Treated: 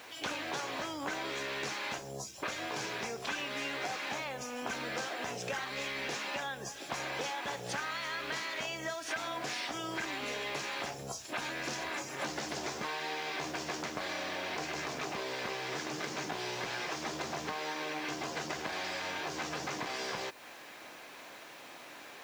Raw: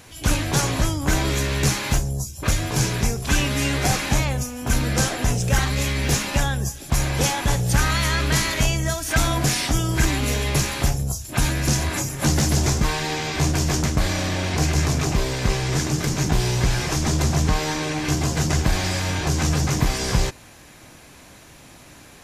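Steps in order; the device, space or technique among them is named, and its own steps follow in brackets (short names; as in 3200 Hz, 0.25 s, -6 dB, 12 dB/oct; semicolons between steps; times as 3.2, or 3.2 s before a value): baby monitor (BPF 440–4100 Hz; compressor 6:1, threshold -35 dBFS, peak gain reduction 15 dB; white noise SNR 24 dB)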